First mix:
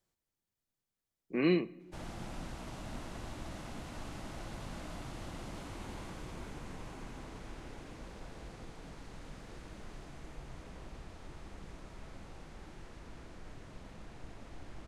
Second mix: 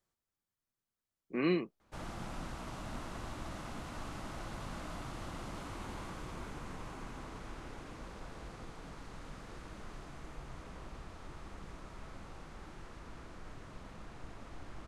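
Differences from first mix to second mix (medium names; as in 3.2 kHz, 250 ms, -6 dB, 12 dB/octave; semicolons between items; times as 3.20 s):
speech: send off; master: add peaking EQ 1.2 kHz +5.5 dB 0.7 oct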